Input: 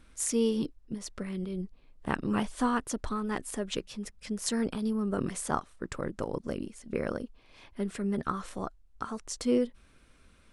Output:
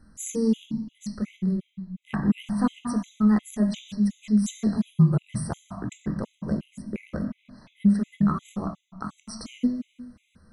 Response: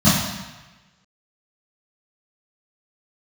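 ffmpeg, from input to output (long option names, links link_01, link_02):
-filter_complex "[0:a]asplit=3[link_01][link_02][link_03];[link_01]afade=type=out:start_time=4.79:duration=0.02[link_04];[link_02]afreqshift=-56,afade=type=in:start_time=4.79:duration=0.02,afade=type=out:start_time=6.02:duration=0.02[link_05];[link_03]afade=type=in:start_time=6.02:duration=0.02[link_06];[link_04][link_05][link_06]amix=inputs=3:normalize=0,asplit=2[link_07][link_08];[1:a]atrim=start_sample=2205[link_09];[link_08][link_09]afir=irnorm=-1:irlink=0,volume=-25.5dB[link_10];[link_07][link_10]amix=inputs=2:normalize=0,afftfilt=real='re*gt(sin(2*PI*2.8*pts/sr)*(1-2*mod(floor(b*sr/1024/2000),2)),0)':imag='im*gt(sin(2*PI*2.8*pts/sr)*(1-2*mod(floor(b*sr/1024/2000),2)),0)':win_size=1024:overlap=0.75"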